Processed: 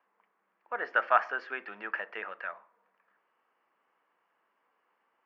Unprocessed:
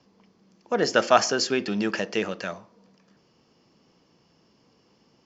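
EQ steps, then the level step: HPF 1300 Hz 12 dB/oct; LPF 1800 Hz 24 dB/oct; +1.5 dB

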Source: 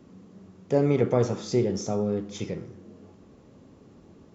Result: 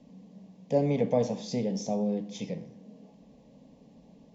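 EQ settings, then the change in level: LPF 5800 Hz 12 dB/oct; fixed phaser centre 360 Hz, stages 6; 0.0 dB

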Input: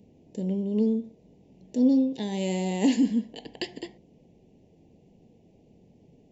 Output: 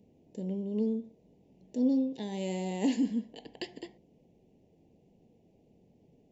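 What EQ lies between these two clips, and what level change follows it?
bell 620 Hz +2.5 dB 2.6 oct; -7.5 dB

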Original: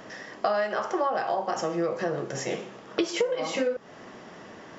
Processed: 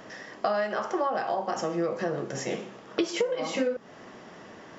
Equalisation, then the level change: dynamic EQ 230 Hz, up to +5 dB, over -47 dBFS, Q 2.4; -1.5 dB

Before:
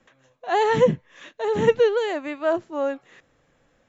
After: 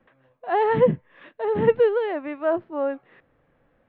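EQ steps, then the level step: Gaussian blur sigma 3.3 samples; 0.0 dB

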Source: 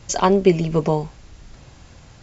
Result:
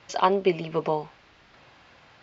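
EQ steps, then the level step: HPF 1400 Hz 6 dB/oct; dynamic EQ 1800 Hz, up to -5 dB, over -43 dBFS, Q 1.7; air absorption 300 m; +5.0 dB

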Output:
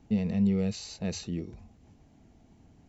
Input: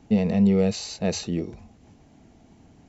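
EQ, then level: low shelf 120 Hz +7 dB; dynamic EQ 650 Hz, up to -6 dB, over -37 dBFS, Q 0.97; -7.5 dB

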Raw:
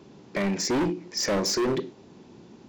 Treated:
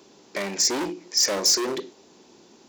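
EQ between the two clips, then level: HPF 41 Hz; tone controls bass -8 dB, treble +11 dB; bell 120 Hz -7.5 dB 1.4 oct; 0.0 dB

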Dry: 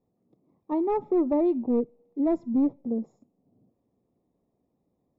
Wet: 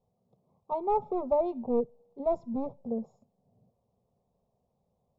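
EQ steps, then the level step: air absorption 64 m; fixed phaser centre 740 Hz, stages 4; +3.5 dB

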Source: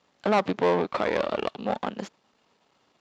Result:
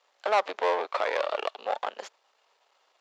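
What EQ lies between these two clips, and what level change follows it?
HPF 510 Hz 24 dB/oct; 0.0 dB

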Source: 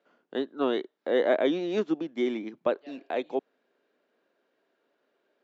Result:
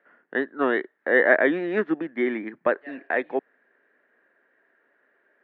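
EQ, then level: synth low-pass 1800 Hz, resonance Q 7.2; +2.5 dB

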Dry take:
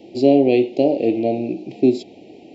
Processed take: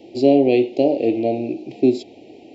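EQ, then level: bell 180 Hz -10 dB 0.32 oct; 0.0 dB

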